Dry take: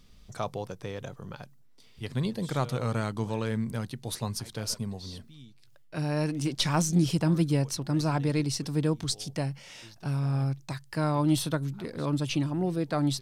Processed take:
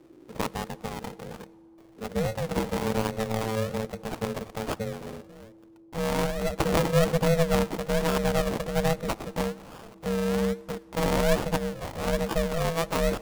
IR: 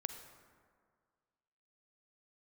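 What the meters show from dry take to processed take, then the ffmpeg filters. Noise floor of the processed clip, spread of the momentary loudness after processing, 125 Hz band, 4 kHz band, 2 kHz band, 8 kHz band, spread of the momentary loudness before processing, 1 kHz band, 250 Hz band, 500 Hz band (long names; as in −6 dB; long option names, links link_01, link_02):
−53 dBFS, 14 LU, −3.0 dB, −0.5 dB, +6.0 dB, −2.0 dB, 15 LU, +4.5 dB, −1.0 dB, +8.0 dB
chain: -filter_complex "[0:a]acrusher=samples=31:mix=1:aa=0.000001:lfo=1:lforange=18.6:lforate=1.2,aeval=exprs='val(0)*sin(2*PI*330*n/s)':channel_layout=same,asplit=2[link_01][link_02];[1:a]atrim=start_sample=2205,asetrate=28224,aresample=44100[link_03];[link_02][link_03]afir=irnorm=-1:irlink=0,volume=-13.5dB[link_04];[link_01][link_04]amix=inputs=2:normalize=0,volume=3dB"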